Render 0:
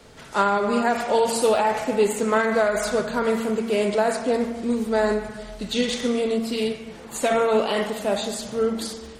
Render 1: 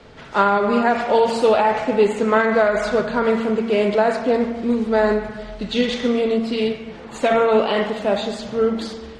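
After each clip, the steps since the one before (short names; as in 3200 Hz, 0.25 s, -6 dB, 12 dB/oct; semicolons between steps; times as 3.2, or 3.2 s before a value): LPF 3800 Hz 12 dB/oct; gain +4 dB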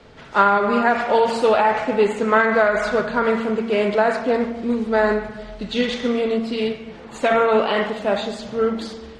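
dynamic EQ 1500 Hz, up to +5 dB, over -29 dBFS, Q 0.9; gain -2 dB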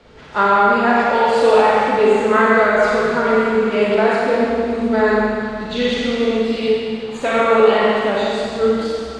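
reverb RT60 2.2 s, pre-delay 32 ms, DRR -4.5 dB; gain -2 dB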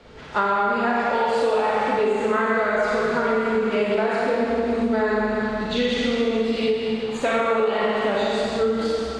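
compressor, threshold -18 dBFS, peak gain reduction 10.5 dB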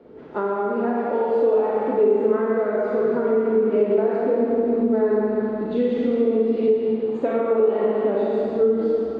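band-pass 340 Hz, Q 2; gain +7 dB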